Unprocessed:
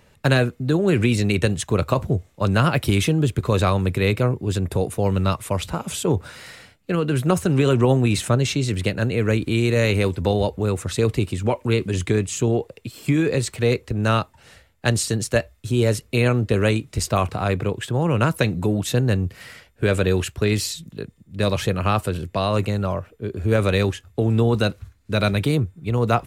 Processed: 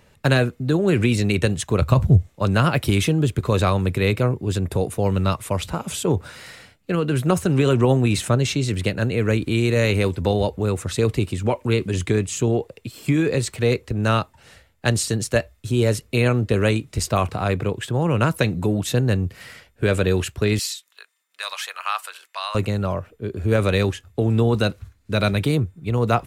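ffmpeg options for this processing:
ffmpeg -i in.wav -filter_complex "[0:a]asplit=3[link_01][link_02][link_03];[link_01]afade=type=out:start_time=1.81:duration=0.02[link_04];[link_02]asubboost=boost=6:cutoff=180,afade=type=in:start_time=1.81:duration=0.02,afade=type=out:start_time=2.27:duration=0.02[link_05];[link_03]afade=type=in:start_time=2.27:duration=0.02[link_06];[link_04][link_05][link_06]amix=inputs=3:normalize=0,asettb=1/sr,asplit=3[link_07][link_08][link_09];[link_07]atrim=end=20.594[link_10];[link_08]atrim=start=20.59:end=22.55,asetpts=PTS-STARTPTS,afade=type=in:duration=0.004:curve=qsin,afade=type=out:start_time=1.956:duration=0.004:curve=qsin,highpass=frequency=980:width=0.5412,highpass=frequency=980:width=1.3066[link_11];[link_09]atrim=start=22.546[link_12];[link_10][link_11]acrossfade=duration=0.004:curve1=hsin:curve2=qsin[link_13];[link_13][link_12]acrossfade=duration=0.004:curve1=qsin:curve2=hsin" out.wav

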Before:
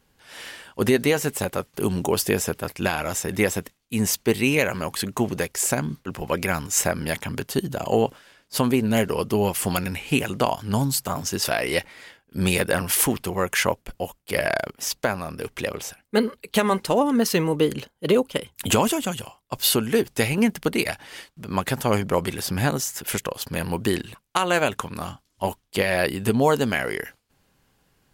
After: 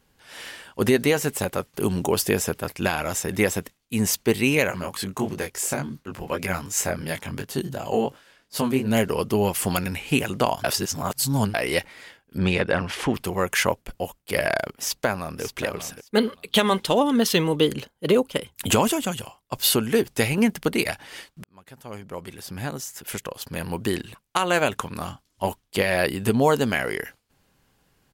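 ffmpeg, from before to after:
ffmpeg -i in.wav -filter_complex "[0:a]asplit=3[link_01][link_02][link_03];[link_01]afade=type=out:start_time=4.7:duration=0.02[link_04];[link_02]flanger=delay=19:depth=3.9:speed=2.8,afade=type=in:start_time=4.7:duration=0.02,afade=type=out:start_time=8.86:duration=0.02[link_05];[link_03]afade=type=in:start_time=8.86:duration=0.02[link_06];[link_04][link_05][link_06]amix=inputs=3:normalize=0,asettb=1/sr,asplit=3[link_07][link_08][link_09];[link_07]atrim=end=12.384[link_10];[link_08]atrim=start=12.38:end=13.14,asetpts=PTS-STARTPTS,afade=type=in:duration=0.004:curve=qsin,afade=type=out:start_time=0.756:duration=0.004:curve=qsin,lowpass=3500[link_11];[link_09]atrim=start=13.136[link_12];[link_10][link_11]acrossfade=duration=0.004:curve1=hsin:curve2=qsin[link_13];[link_13][link_12]acrossfade=duration=0.004:curve1=qsin:curve2=hsin,asplit=2[link_14][link_15];[link_15]afade=type=in:start_time=14.74:duration=0.01,afade=type=out:start_time=15.42:duration=0.01,aecho=0:1:580|1160:0.298538|0.0447807[link_16];[link_14][link_16]amix=inputs=2:normalize=0,asettb=1/sr,asplit=3[link_17][link_18][link_19];[link_17]atrim=end=16.184[link_20];[link_18]atrim=start=16.18:end=17.67,asetpts=PTS-STARTPTS,afade=type=in:duration=0.004:curve=qsin,afade=type=out:start_time=1.486:duration=0.004:curve=qsin,equalizer=frequency=3400:width=3.6:gain=12[link_21];[link_19]atrim=start=17.666[link_22];[link_20][link_21]acrossfade=duration=0.004:curve1=hsin:curve2=qsin[link_23];[link_23][link_22]acrossfade=duration=0.004:curve1=qsin:curve2=hsin,asplit=4[link_24][link_25][link_26][link_27];[link_24]atrim=end=10.642[link_28];[link_25]atrim=start=10.638:end=11.542,asetpts=PTS-STARTPTS,areverse[link_29];[link_26]atrim=start=11.538:end=21.44,asetpts=PTS-STARTPTS,afade=type=out:start_time=9.898:duration=0.004:curve=hsin[link_30];[link_27]atrim=start=21.44,asetpts=PTS-STARTPTS,afade=type=in:duration=3.17[link_31];[link_28][link_29]acrossfade=duration=0.004:curve1=hsin:curve2=hsin[link_32];[link_30][link_31]concat=n=2:v=0:a=1[link_33];[link_32][link_33]acrossfade=duration=0.004:curve1=hsin:curve2=hsin" out.wav

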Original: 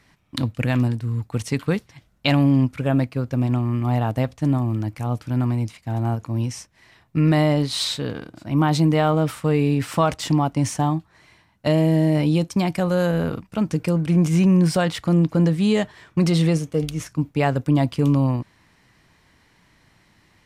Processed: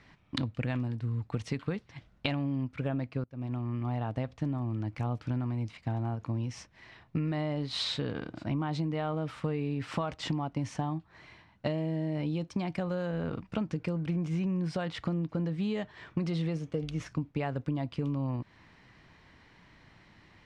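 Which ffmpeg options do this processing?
ffmpeg -i in.wav -filter_complex "[0:a]asplit=2[link_01][link_02];[link_01]atrim=end=3.24,asetpts=PTS-STARTPTS,afade=type=out:start_time=3.236:duration=0.004:curve=hsin:silence=0.0668344[link_03];[link_02]atrim=start=3.24,asetpts=PTS-STARTPTS,afade=type=in:duration=1.6:silence=0.0668344[link_04];[link_03][link_04]concat=n=2:v=0:a=1,lowpass=4100,acompressor=threshold=-29dB:ratio=10" out.wav

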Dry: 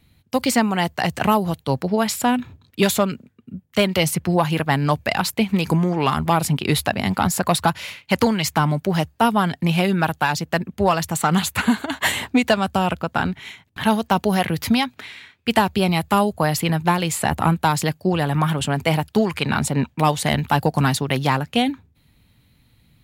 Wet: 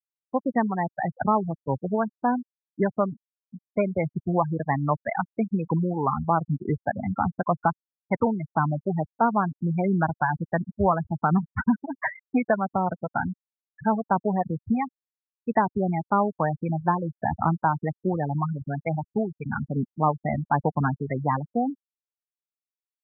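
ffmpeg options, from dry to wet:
ffmpeg -i in.wav -filter_complex "[0:a]asettb=1/sr,asplit=3[link_01][link_02][link_03];[link_01]atrim=end=9.854[link_04];[link_02]atrim=start=9.85:end=12.06,asetpts=PTS-STARTPTS,afade=type=in:duration=0.004:curve=qsin,afade=type=out:start_time=2.206:duration=0.004:curve=qsin,lowshelf=frequency=180:gain=6.5[link_05];[link_03]atrim=start=12.056[link_06];[link_04][link_05]acrossfade=duration=0.004:curve1=hsin:curve2=qsin[link_07];[link_07][link_06]acrossfade=duration=0.004:curve1=qsin:curve2=hsin,asplit=3[link_08][link_09][link_10];[link_08]afade=type=out:start_time=18.37:duration=0.02[link_11];[link_09]equalizer=frequency=500:width_type=o:width=2.8:gain=-3,afade=type=in:start_time=18.37:duration=0.02,afade=type=out:start_time=19.67:duration=0.02[link_12];[link_10]afade=type=in:start_time=19.67:duration=0.02[link_13];[link_11][link_12][link_13]amix=inputs=3:normalize=0,lowpass=frequency=2200:width=0.5412,lowpass=frequency=2200:width=1.3066,afftfilt=real='re*gte(hypot(re,im),0.224)':imag='im*gte(hypot(re,im),0.224)':win_size=1024:overlap=0.75,equalizer=frequency=910:width_type=o:width=1.7:gain=3,volume=-6dB" out.wav

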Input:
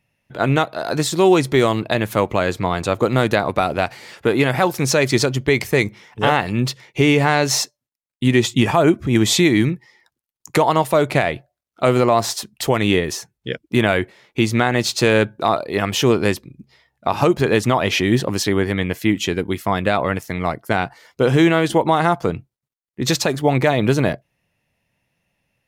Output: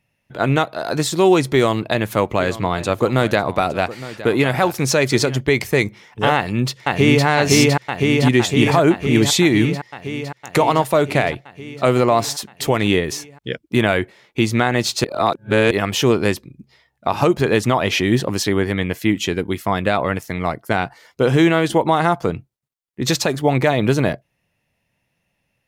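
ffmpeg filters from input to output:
ffmpeg -i in.wav -filter_complex "[0:a]asplit=3[link_01][link_02][link_03];[link_01]afade=type=out:start_time=2.35:duration=0.02[link_04];[link_02]aecho=1:1:863:0.168,afade=type=in:start_time=2.35:duration=0.02,afade=type=out:start_time=5.39:duration=0.02[link_05];[link_03]afade=type=in:start_time=5.39:duration=0.02[link_06];[link_04][link_05][link_06]amix=inputs=3:normalize=0,asplit=2[link_07][link_08];[link_08]afade=type=in:start_time=6.35:duration=0.01,afade=type=out:start_time=7.26:duration=0.01,aecho=0:1:510|1020|1530|2040|2550|3060|3570|4080|4590|5100|5610|6120:1|0.75|0.5625|0.421875|0.316406|0.237305|0.177979|0.133484|0.100113|0.0750847|0.0563135|0.0422351[link_09];[link_07][link_09]amix=inputs=2:normalize=0,asplit=3[link_10][link_11][link_12];[link_10]atrim=end=15.042[link_13];[link_11]atrim=start=15.038:end=15.712,asetpts=PTS-STARTPTS,areverse[link_14];[link_12]atrim=start=15.708[link_15];[link_13][link_14]acrossfade=duration=0.004:curve1=hsin:curve2=hsin[link_16];[link_16][link_15]acrossfade=duration=0.004:curve1=hsin:curve2=hsin" out.wav

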